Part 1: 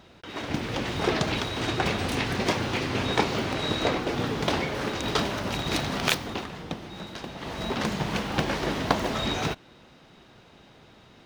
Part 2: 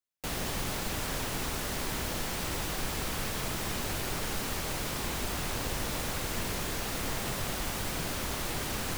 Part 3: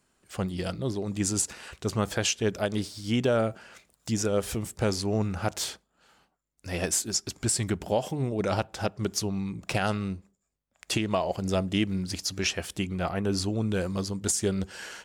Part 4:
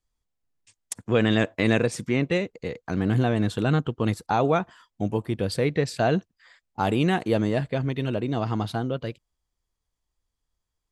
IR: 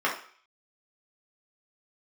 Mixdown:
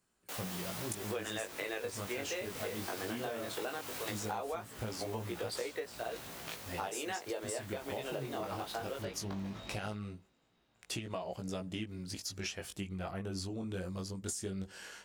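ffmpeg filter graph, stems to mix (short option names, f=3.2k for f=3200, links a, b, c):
-filter_complex "[0:a]adelay=400,volume=-18dB[a];[1:a]highpass=410,adelay=50,volume=-4.5dB,afade=t=out:st=4.1:d=0.35:silence=0.446684[b];[2:a]volume=-6dB,asplit=2[c][d];[3:a]highpass=f=400:w=0.5412,highpass=f=400:w=1.3066,volume=0.5dB[e];[d]apad=whole_len=481479[f];[e][f]sidechaingate=range=-9dB:threshold=-56dB:ratio=16:detection=peak[g];[a][b][c][g]amix=inputs=4:normalize=0,highshelf=f=12k:g=7,flanger=delay=17:depth=4.9:speed=0.18,acompressor=threshold=-35dB:ratio=12"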